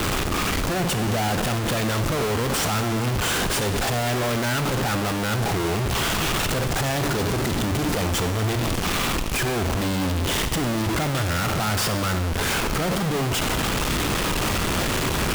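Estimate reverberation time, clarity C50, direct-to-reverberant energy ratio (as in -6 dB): 1.3 s, 9.5 dB, 8.5 dB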